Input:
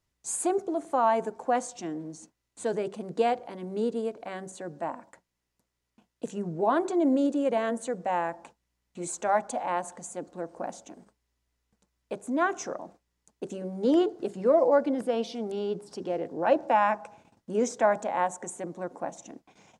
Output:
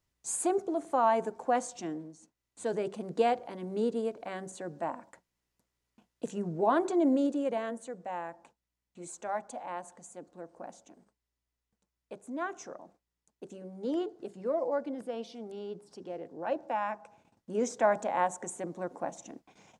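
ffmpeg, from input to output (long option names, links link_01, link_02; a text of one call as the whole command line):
ffmpeg -i in.wav -af "volume=15.5dB,afade=type=out:start_time=1.91:duration=0.24:silence=0.354813,afade=type=in:start_time=2.15:duration=0.74:silence=0.334965,afade=type=out:start_time=7:duration=0.85:silence=0.398107,afade=type=in:start_time=16.99:duration=1.06:silence=0.398107" out.wav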